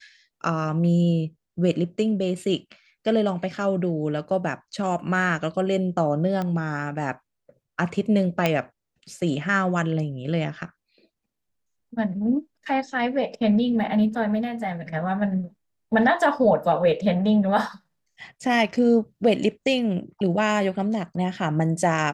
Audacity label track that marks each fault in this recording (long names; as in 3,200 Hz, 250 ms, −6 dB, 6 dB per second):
6.420000	6.420000	click −17 dBFS
8.460000	8.460000	click −7 dBFS